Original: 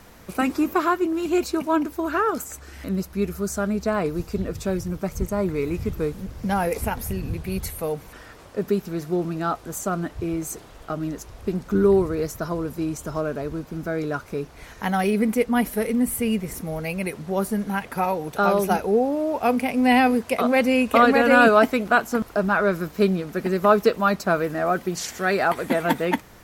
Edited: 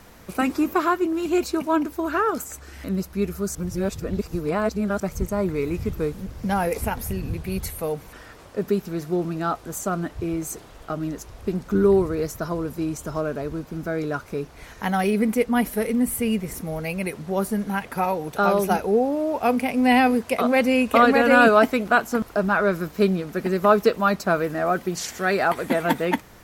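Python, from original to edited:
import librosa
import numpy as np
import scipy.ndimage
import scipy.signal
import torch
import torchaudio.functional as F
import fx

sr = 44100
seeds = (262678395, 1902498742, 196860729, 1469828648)

y = fx.edit(x, sr, fx.reverse_span(start_s=3.55, length_s=1.45), tone=tone)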